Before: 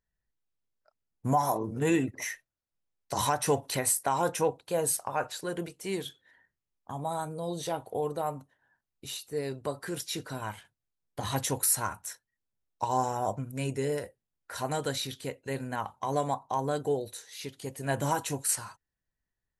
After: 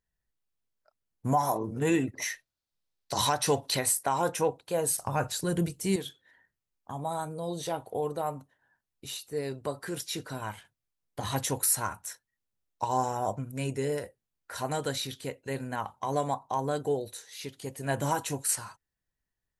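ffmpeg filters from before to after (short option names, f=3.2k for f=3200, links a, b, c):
-filter_complex "[0:a]asettb=1/sr,asplit=3[a][b][c];[a]atrim=end=2.154[d];[b]atrim=start=2.15:end=3.86,asetpts=PTS-STARTPTS,afade=t=in:d=0.004:c=qsin,afade=t=out:st=1.706:d=0.004:c=qsin,equalizer=f=4.2k:t=o:w=0.87:g=8[e];[c]atrim=start=3.856[f];[d][e]acrossfade=d=0.004:c1=hsin:c2=qsin[g];[g][f]acrossfade=d=0.004:c1=qsin:c2=hsin,asettb=1/sr,asplit=3[h][i][j];[h]atrim=end=4.984[k];[i]atrim=start=4.98:end=5.96,asetpts=PTS-STARTPTS,afade=t=in:d=0.004:c=qsin,afade=t=out:st=0.976:d=0.004:c=qsin,bass=f=250:g=15,treble=f=4k:g=8[l];[j]atrim=start=5.956[m];[k][l]acrossfade=d=0.004:c1=hsin:c2=qsin[n];[n][m]acrossfade=d=0.004:c1=qsin:c2=hsin"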